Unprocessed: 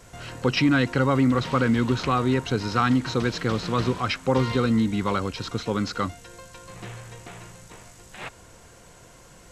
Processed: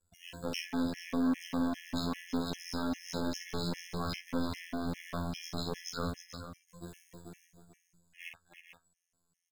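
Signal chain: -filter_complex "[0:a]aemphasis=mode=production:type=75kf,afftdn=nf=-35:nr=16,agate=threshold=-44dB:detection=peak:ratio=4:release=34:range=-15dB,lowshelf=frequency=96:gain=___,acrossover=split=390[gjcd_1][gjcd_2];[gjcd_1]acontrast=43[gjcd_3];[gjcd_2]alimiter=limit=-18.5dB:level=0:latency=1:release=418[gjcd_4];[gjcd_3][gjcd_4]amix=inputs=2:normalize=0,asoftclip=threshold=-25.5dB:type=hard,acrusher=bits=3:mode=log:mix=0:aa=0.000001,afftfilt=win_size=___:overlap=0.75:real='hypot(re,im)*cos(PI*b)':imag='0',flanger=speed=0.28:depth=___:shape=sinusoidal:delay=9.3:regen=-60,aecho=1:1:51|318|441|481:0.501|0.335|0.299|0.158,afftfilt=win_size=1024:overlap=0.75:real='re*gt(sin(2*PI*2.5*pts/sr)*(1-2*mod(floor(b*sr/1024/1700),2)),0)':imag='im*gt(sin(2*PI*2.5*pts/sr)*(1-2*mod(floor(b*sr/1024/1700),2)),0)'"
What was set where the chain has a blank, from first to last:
-5.5, 2048, 3.5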